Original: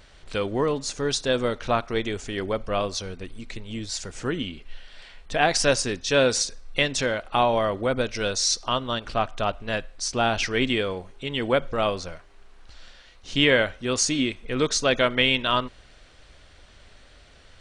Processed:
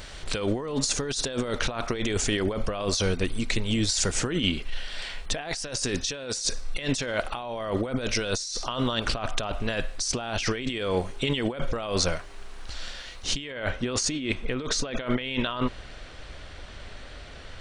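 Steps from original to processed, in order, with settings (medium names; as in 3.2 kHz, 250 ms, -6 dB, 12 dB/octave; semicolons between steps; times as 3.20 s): treble shelf 5.1 kHz +6 dB, from 13.52 s -7 dB; compressor with a negative ratio -32 dBFS, ratio -1; trim +3.5 dB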